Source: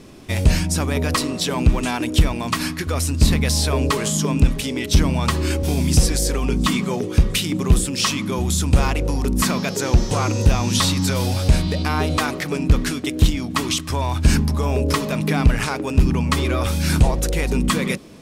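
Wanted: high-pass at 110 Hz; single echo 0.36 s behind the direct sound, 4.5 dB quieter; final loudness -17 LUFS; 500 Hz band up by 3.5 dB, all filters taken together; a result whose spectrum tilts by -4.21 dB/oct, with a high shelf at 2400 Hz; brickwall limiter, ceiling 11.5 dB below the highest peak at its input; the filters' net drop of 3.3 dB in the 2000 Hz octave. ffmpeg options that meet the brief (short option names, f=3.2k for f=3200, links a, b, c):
-af "highpass=110,equalizer=f=500:t=o:g=4.5,equalizer=f=2k:t=o:g=-7.5,highshelf=f=2.4k:g=5.5,alimiter=limit=-12.5dB:level=0:latency=1,aecho=1:1:360:0.596,volume=4.5dB"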